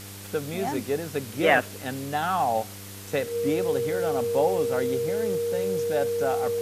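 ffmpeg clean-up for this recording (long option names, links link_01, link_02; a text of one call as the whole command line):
ffmpeg -i in.wav -af "bandreject=frequency=99.1:width_type=h:width=4,bandreject=frequency=198.2:width_type=h:width=4,bandreject=frequency=297.3:width_type=h:width=4,bandreject=frequency=396.4:width_type=h:width=4,bandreject=frequency=495.5:width_type=h:width=4,bandreject=frequency=470:width=30,afftdn=noise_reduction=30:noise_floor=-40" out.wav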